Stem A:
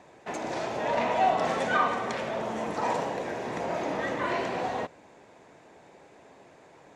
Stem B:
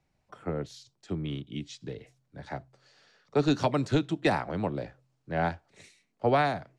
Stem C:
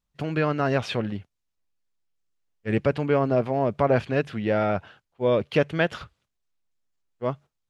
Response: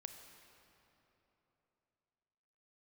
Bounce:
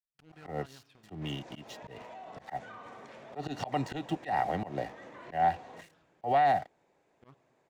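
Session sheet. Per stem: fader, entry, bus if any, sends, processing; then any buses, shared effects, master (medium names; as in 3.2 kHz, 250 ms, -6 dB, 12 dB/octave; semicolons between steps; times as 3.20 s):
-18.5 dB, 0.95 s, no bus, send -11.5 dB, peak limiter -22 dBFS, peak gain reduction 8.5 dB
-2.5 dB, 0.00 s, bus A, no send, small resonant body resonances 760/1900/2800 Hz, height 18 dB, ringing for 35 ms
-11.5 dB, 0.00 s, bus A, send -16.5 dB, compression, threshold -24 dBFS, peak gain reduction 8.5 dB; peaking EQ 570 Hz -12.5 dB 0.52 oct; auto duck -23 dB, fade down 1.45 s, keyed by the second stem
bus A: 0.0 dB, crossover distortion -51.5 dBFS; peak limiter -17.5 dBFS, peak gain reduction 10.5 dB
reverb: on, RT60 3.4 s, pre-delay 27 ms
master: slow attack 131 ms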